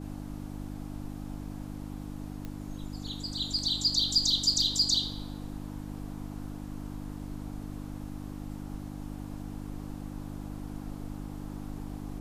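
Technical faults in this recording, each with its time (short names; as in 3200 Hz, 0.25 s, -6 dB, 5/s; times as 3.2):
hum 50 Hz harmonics 6 -40 dBFS
2.45 pop -25 dBFS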